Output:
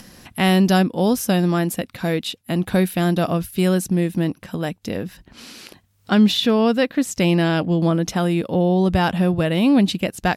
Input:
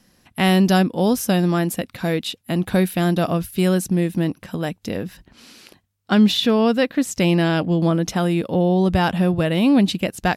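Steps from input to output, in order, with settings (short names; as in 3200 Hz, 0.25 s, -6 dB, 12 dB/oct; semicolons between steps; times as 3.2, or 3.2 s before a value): upward compressor, threshold -32 dBFS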